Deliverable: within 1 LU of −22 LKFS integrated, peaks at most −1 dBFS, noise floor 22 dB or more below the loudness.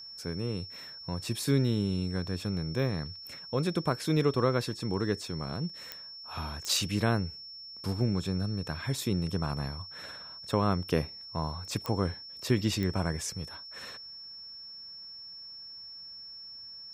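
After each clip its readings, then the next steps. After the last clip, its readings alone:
number of clicks 4; interfering tone 5,400 Hz; level of the tone −43 dBFS; integrated loudness −32.5 LKFS; sample peak −13.0 dBFS; target loudness −22.0 LKFS
→ click removal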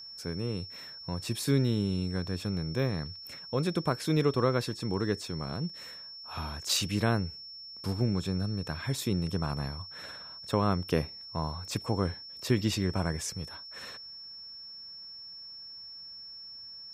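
number of clicks 0; interfering tone 5,400 Hz; level of the tone −43 dBFS
→ notch filter 5,400 Hz, Q 30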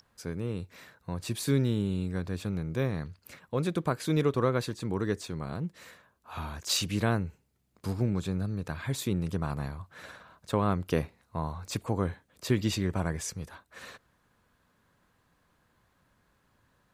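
interfering tone none found; integrated loudness −31.5 LKFS; sample peak −13.5 dBFS; target loudness −22.0 LKFS
→ level +9.5 dB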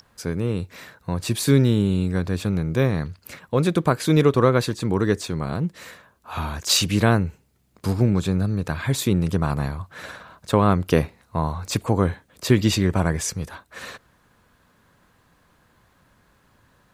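integrated loudness −22.0 LKFS; sample peak −4.0 dBFS; background noise floor −61 dBFS

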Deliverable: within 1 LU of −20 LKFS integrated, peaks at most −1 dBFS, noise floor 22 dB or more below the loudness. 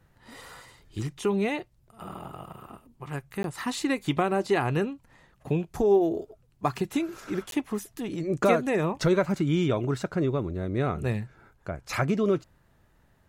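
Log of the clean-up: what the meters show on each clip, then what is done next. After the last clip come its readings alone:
number of dropouts 2; longest dropout 12 ms; integrated loudness −28.0 LKFS; sample peak −10.5 dBFS; target loudness −20.0 LKFS
→ repair the gap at 0:03.43/0:07.51, 12 ms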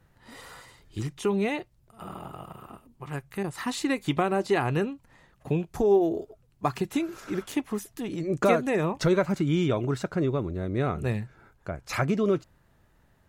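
number of dropouts 0; integrated loudness −28.0 LKFS; sample peak −10.5 dBFS; target loudness −20.0 LKFS
→ level +8 dB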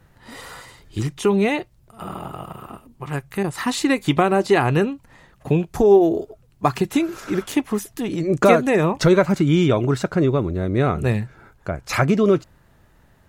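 integrated loudness −20.0 LKFS; sample peak −2.5 dBFS; background noise floor −56 dBFS

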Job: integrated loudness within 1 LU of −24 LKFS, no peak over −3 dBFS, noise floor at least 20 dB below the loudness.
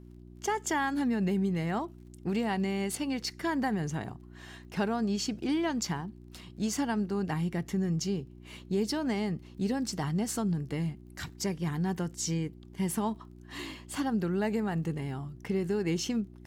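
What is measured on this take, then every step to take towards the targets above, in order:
crackle rate 23 per second; mains hum 60 Hz; hum harmonics up to 360 Hz; level of the hum −49 dBFS; integrated loudness −32.0 LKFS; sample peak −17.0 dBFS; target loudness −24.0 LKFS
→ click removal
hum removal 60 Hz, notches 6
level +8 dB

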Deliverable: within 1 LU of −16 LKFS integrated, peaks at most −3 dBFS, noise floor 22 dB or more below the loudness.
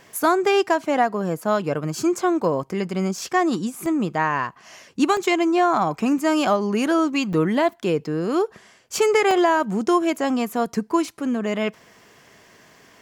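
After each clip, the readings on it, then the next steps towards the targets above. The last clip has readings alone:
number of dropouts 5; longest dropout 1.1 ms; integrated loudness −21.5 LKFS; sample peak −6.0 dBFS; target loudness −16.0 LKFS
→ repair the gap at 0:03.86/0:05.17/0:07.33/0:09.31/0:11.05, 1.1 ms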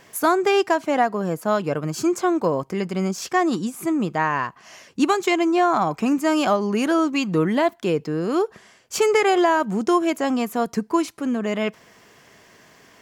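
number of dropouts 0; integrated loudness −21.5 LKFS; sample peak −6.0 dBFS; target loudness −16.0 LKFS
→ level +5.5 dB
brickwall limiter −3 dBFS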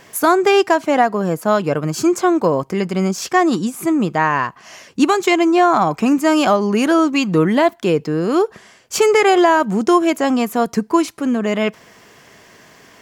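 integrated loudness −16.5 LKFS; sample peak −3.0 dBFS; background noise floor −47 dBFS

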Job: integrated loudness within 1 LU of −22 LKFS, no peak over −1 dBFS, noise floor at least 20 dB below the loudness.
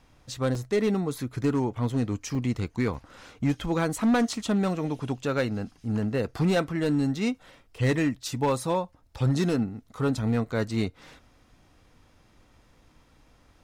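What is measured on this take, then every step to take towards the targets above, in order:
share of clipped samples 1.4%; peaks flattened at −18.0 dBFS; number of dropouts 3; longest dropout 2.8 ms; integrated loudness −27.5 LKFS; sample peak −18.0 dBFS; target loudness −22.0 LKFS
→ clipped peaks rebuilt −18 dBFS
repair the gap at 0:00.55/0:02.35/0:02.94, 2.8 ms
level +5.5 dB

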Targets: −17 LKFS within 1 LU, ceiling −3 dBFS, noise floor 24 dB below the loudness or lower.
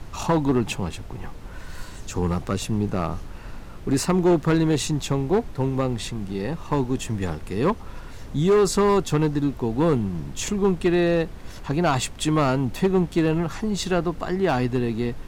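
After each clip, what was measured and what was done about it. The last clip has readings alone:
share of clipped samples 1.1%; peaks flattened at −13.5 dBFS; background noise floor −39 dBFS; target noise floor −48 dBFS; integrated loudness −23.5 LKFS; sample peak −13.5 dBFS; target loudness −17.0 LKFS
→ clipped peaks rebuilt −13.5 dBFS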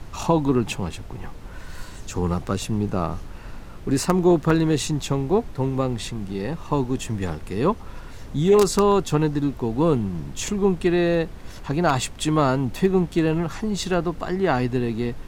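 share of clipped samples 0.0%; background noise floor −39 dBFS; target noise floor −47 dBFS
→ noise reduction from a noise print 8 dB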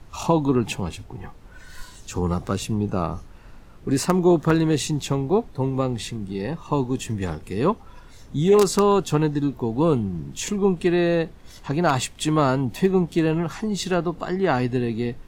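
background noise floor −45 dBFS; target noise floor −47 dBFS
→ noise reduction from a noise print 6 dB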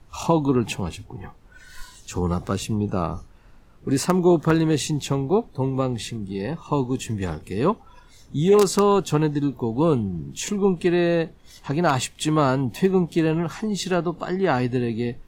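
background noise floor −50 dBFS; integrated loudness −23.0 LKFS; sample peak −4.5 dBFS; target loudness −17.0 LKFS
→ level +6 dB
brickwall limiter −3 dBFS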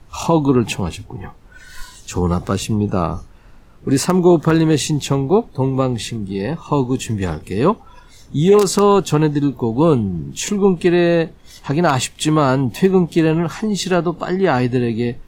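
integrated loudness −17.5 LKFS; sample peak −3.0 dBFS; background noise floor −44 dBFS

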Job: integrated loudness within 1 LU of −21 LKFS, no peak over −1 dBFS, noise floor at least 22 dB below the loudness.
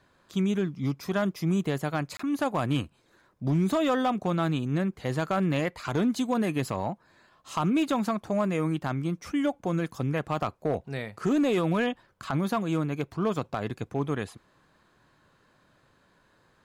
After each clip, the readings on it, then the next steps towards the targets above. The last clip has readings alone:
share of clipped samples 0.6%; peaks flattened at −19.0 dBFS; number of dropouts 1; longest dropout 24 ms; integrated loudness −28.5 LKFS; sample peak −19.0 dBFS; target loudness −21.0 LKFS
→ clipped peaks rebuilt −19 dBFS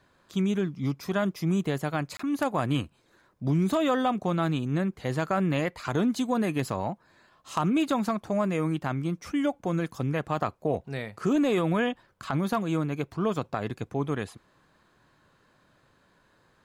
share of clipped samples 0.0%; number of dropouts 1; longest dropout 24 ms
→ repair the gap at 0:02.17, 24 ms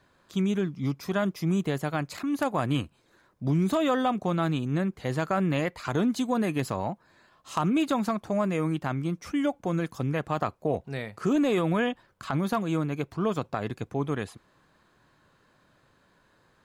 number of dropouts 0; integrated loudness −28.5 LKFS; sample peak −12.5 dBFS; target loudness −21.0 LKFS
→ level +7.5 dB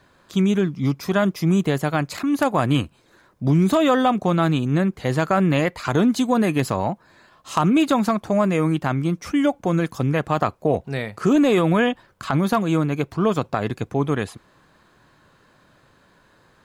integrated loudness −21.0 LKFS; sample peak −5.0 dBFS; background noise floor −58 dBFS

